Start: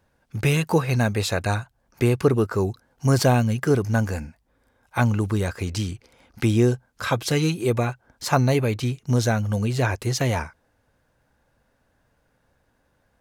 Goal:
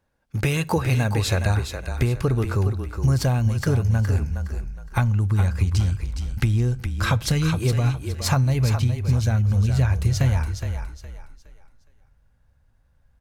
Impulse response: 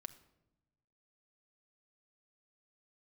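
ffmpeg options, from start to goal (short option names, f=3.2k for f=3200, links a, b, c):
-filter_complex "[0:a]agate=range=-10dB:threshold=-52dB:ratio=16:detection=peak,asubboost=boost=8.5:cutoff=110,acompressor=threshold=-21dB:ratio=6,asplit=5[a][b][c][d][e];[b]adelay=415,afreqshift=-30,volume=-7.5dB[f];[c]adelay=830,afreqshift=-60,volume=-17.7dB[g];[d]adelay=1245,afreqshift=-90,volume=-27.8dB[h];[e]adelay=1660,afreqshift=-120,volume=-38dB[i];[a][f][g][h][i]amix=inputs=5:normalize=0,asplit=2[j][k];[1:a]atrim=start_sample=2205,asetrate=66150,aresample=44100[l];[k][l]afir=irnorm=-1:irlink=0,volume=2.5dB[m];[j][m]amix=inputs=2:normalize=0"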